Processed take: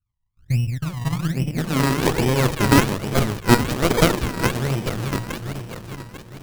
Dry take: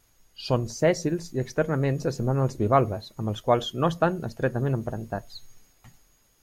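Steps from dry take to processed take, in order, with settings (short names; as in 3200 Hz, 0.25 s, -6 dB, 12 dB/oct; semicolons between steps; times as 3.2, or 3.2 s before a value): regenerating reverse delay 0.213 s, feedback 74%, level -8 dB; 3.83–4.32 weighting filter D; gate with hold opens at -46 dBFS; dynamic EQ 1300 Hz, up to +6 dB, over -41 dBFS, Q 2.1; in parallel at -1.5 dB: compressor, threshold -30 dBFS, peak gain reduction 17.5 dB; on the sum: low-pass sweep 110 Hz -> 3600 Hz, 0.97–4.04; on a send: thin delay 1.011 s, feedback 51%, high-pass 5500 Hz, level -12 dB; on the sum: decimation with a swept rate 31×, swing 100% 1.2 Hz; running maximum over 33 samples; gain +1.5 dB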